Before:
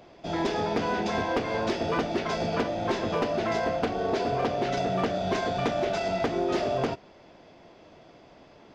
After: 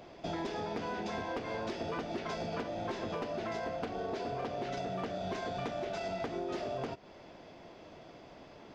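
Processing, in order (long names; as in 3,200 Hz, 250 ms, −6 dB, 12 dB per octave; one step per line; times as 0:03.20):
downward compressor 6 to 1, threshold −35 dBFS, peak gain reduction 12 dB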